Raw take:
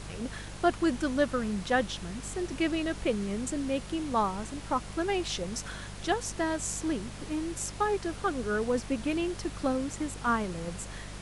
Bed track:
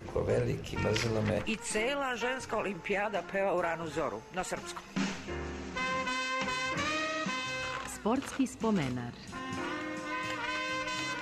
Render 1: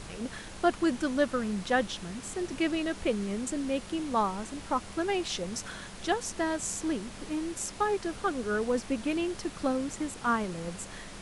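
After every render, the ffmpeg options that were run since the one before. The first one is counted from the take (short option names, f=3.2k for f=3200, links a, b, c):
-af "bandreject=f=50:t=h:w=4,bandreject=f=100:t=h:w=4,bandreject=f=150:t=h:w=4"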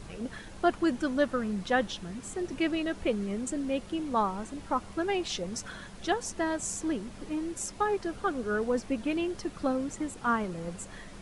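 -af "afftdn=nr=7:nf=-45"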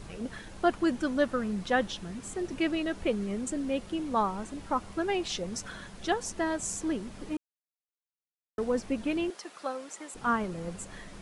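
-filter_complex "[0:a]asettb=1/sr,asplit=3[a][b][c];[a]atrim=end=9.304[d];[b]atrim=start=9.3:end=10.15,asetpts=PTS-STARTPTS,afade=t=in:d=0.004:c=qsin,afade=t=out:st=0.846:d=0.004:c=qsin,highpass=620[e];[c]atrim=start=10.146[f];[d][e]acrossfade=d=0.004:c1=hsin:c2=qsin[g];[g][f]acrossfade=d=0.004:c1=qsin:c2=hsin,asplit=3[h][i][j];[h]atrim=end=7.37,asetpts=PTS-STARTPTS,afade=t=out:st=7.366:d=0.004:c=hsin[k];[i]atrim=start=7.37:end=8.58,asetpts=PTS-STARTPTS,volume=0[l];[j]atrim=start=8.58,asetpts=PTS-STARTPTS,afade=t=in:d=0.004:c=hsin[m];[k][l][m]concat=n=3:v=0:a=1"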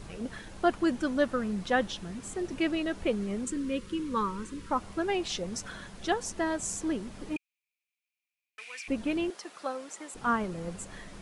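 -filter_complex "[0:a]asettb=1/sr,asplit=3[a][b][c];[a]atrim=end=3.454[d];[b]atrim=start=3.45:end=4.71,asetpts=PTS-STARTPTS,afade=t=in:d=0.004:c=qsin,afade=t=out:st=1.256:d=0.004:c=qsin,asuperstop=centerf=710:order=8:qfactor=1.8[e];[c]atrim=start=4.706[f];[d][e]acrossfade=d=0.004:c1=hsin:c2=qsin[g];[g][f]acrossfade=d=0.004:c1=qsin:c2=hsin,asettb=1/sr,asplit=3[h][i][j];[h]atrim=end=7.364[k];[i]atrim=start=7.36:end=8.88,asetpts=PTS-STARTPTS,afade=t=in:d=0.004:c=qsin,afade=t=out:st=1.516:d=0.004:c=qsin,highpass=f=2.4k:t=q:w=13[l];[j]atrim=start=8.876[m];[k][l]acrossfade=d=0.004:c1=hsin:c2=qsin[n];[n][m]acrossfade=d=0.004:c1=qsin:c2=hsin"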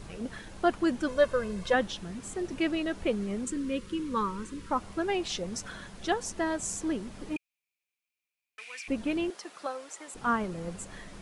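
-filter_complex "[0:a]asettb=1/sr,asplit=3[a][b][c];[a]atrim=end=1.084[d];[b]atrim=start=1.08:end=1.74,asetpts=PTS-STARTPTS,afade=t=in:d=0.004:c=qsin,afade=t=out:st=0.656:d=0.004:c=qsin,aecho=1:1:1.9:0.79,atrim=end_sample=29106[e];[c]atrim=start=1.736[f];[d][e]acrossfade=d=0.004:c1=hsin:c2=qsin[g];[g][f]acrossfade=d=0.004:c1=qsin:c2=hsin,asettb=1/sr,asplit=3[h][i][j];[h]atrim=end=9.664[k];[i]atrim=start=9.66:end=10.08,asetpts=PTS-STARTPTS,afade=t=in:d=0.004:c=qsin,afade=t=out:st=0.416:d=0.004:c=qsin,equalizer=f=210:w=1.6:g=-12[l];[j]atrim=start=10.076[m];[k][l]acrossfade=d=0.004:c1=hsin:c2=qsin[n];[n][m]acrossfade=d=0.004:c1=qsin:c2=hsin"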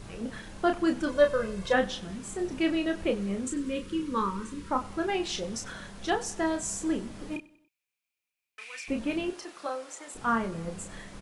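-filter_complex "[0:a]asplit=2[a][b];[b]adelay=31,volume=-6dB[c];[a][c]amix=inputs=2:normalize=0,aecho=1:1:95|190|285:0.0944|0.0444|0.0209"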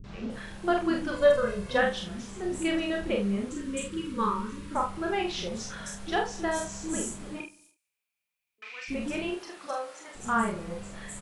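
-filter_complex "[0:a]asplit=2[a][b];[b]adelay=45,volume=-4dB[c];[a][c]amix=inputs=2:normalize=0,acrossover=split=310|6000[d][e][f];[e]adelay=40[g];[f]adelay=300[h];[d][g][h]amix=inputs=3:normalize=0"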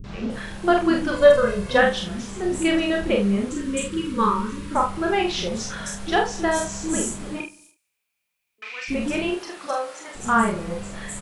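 -af "volume=7.5dB"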